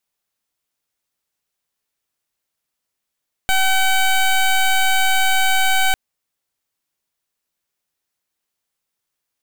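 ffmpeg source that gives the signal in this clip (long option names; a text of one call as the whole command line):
ffmpeg -f lavfi -i "aevalsrc='0.178*(2*lt(mod(762*t,1),0.14)-1)':duration=2.45:sample_rate=44100" out.wav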